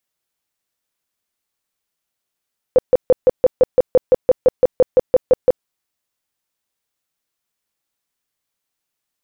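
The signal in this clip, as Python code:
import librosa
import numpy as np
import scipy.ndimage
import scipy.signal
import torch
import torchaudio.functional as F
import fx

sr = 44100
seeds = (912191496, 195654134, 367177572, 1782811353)

y = fx.tone_burst(sr, hz=509.0, cycles=13, every_s=0.17, bursts=17, level_db=-6.0)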